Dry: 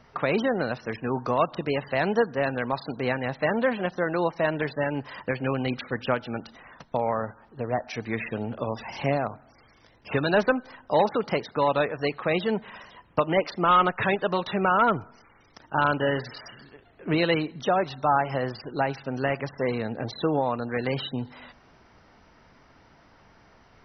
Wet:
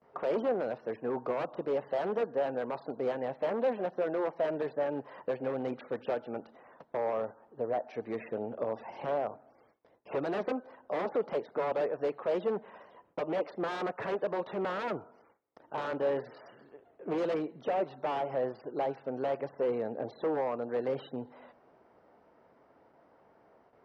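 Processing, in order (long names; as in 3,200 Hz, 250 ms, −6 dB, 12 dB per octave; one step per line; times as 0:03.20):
wave folding −21 dBFS
resonant band-pass 520 Hz, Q 1.4
noise gate with hold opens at −54 dBFS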